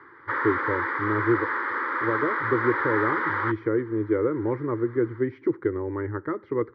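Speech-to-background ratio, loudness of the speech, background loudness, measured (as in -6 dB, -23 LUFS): -1.0 dB, -27.5 LUFS, -26.5 LUFS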